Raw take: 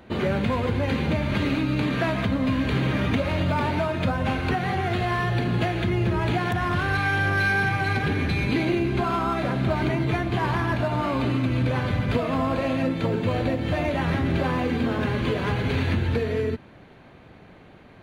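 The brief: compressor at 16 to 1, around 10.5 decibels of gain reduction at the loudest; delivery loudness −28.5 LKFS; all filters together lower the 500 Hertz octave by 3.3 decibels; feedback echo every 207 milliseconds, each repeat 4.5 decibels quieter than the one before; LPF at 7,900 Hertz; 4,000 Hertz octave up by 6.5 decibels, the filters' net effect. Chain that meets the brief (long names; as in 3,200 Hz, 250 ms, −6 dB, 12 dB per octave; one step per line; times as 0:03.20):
low-pass filter 7,900 Hz
parametric band 500 Hz −4.5 dB
parametric band 4,000 Hz +8.5 dB
downward compressor 16 to 1, threshold −30 dBFS
repeating echo 207 ms, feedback 60%, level −4.5 dB
level +3.5 dB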